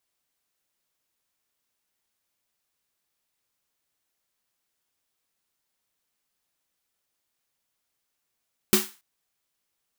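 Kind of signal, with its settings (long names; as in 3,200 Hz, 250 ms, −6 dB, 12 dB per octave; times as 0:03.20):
synth snare length 0.28 s, tones 210 Hz, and 370 Hz, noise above 860 Hz, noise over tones 0 dB, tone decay 0.21 s, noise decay 0.33 s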